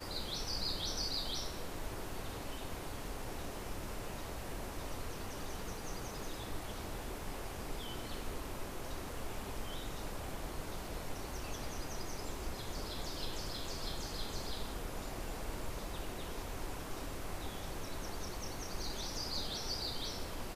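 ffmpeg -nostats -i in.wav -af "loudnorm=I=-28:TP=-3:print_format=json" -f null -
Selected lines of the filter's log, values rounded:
"input_i" : "-42.0",
"input_tp" : "-24.0",
"input_lra" : "3.4",
"input_thresh" : "-52.0",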